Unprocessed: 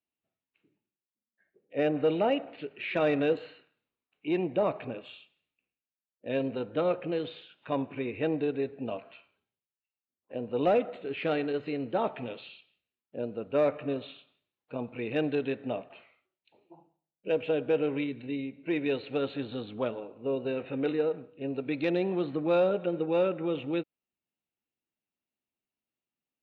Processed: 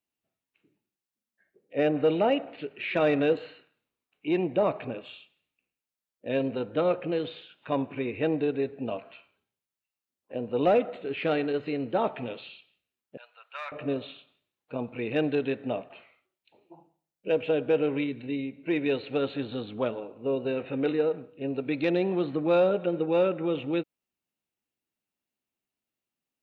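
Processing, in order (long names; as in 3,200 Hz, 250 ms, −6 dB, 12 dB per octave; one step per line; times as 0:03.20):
0:13.17–0:13.72: inverse Chebyshev high-pass filter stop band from 320 Hz, stop band 60 dB
level +2.5 dB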